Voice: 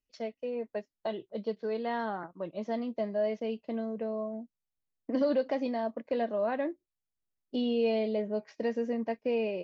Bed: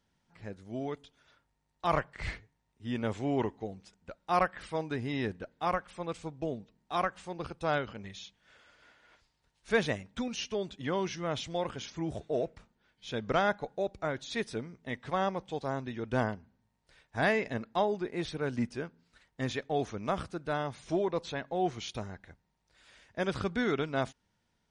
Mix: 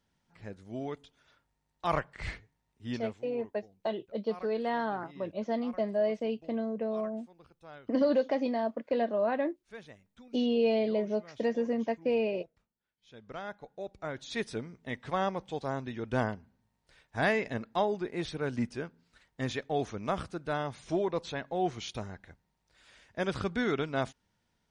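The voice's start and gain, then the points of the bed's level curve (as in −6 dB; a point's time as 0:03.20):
2.80 s, +1.5 dB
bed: 0:02.93 −1 dB
0:03.24 −19.5 dB
0:12.94 −19.5 dB
0:14.40 0 dB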